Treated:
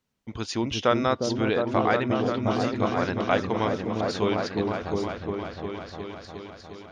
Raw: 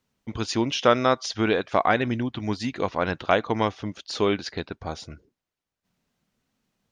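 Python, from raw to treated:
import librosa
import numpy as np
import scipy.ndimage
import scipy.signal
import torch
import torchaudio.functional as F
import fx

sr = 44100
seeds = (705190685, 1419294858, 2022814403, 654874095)

y = fx.echo_opening(x, sr, ms=356, hz=400, octaves=1, feedback_pct=70, wet_db=0)
y = F.gain(torch.from_numpy(y), -3.5).numpy()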